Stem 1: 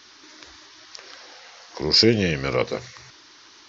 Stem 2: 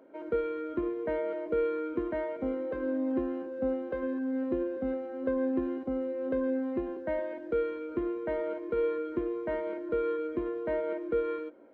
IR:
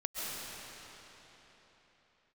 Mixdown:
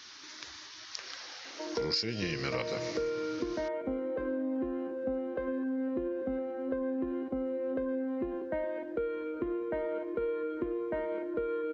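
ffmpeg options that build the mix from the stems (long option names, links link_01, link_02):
-filter_complex "[0:a]highpass=94,equalizer=frequency=430:width=0.59:gain=-7,volume=-0.5dB,asplit=2[link_01][link_02];[link_02]volume=-18.5dB[link_03];[1:a]adelay=1450,volume=1.5dB[link_04];[2:a]atrim=start_sample=2205[link_05];[link_03][link_05]afir=irnorm=-1:irlink=0[link_06];[link_01][link_04][link_06]amix=inputs=3:normalize=0,acompressor=threshold=-30dB:ratio=6"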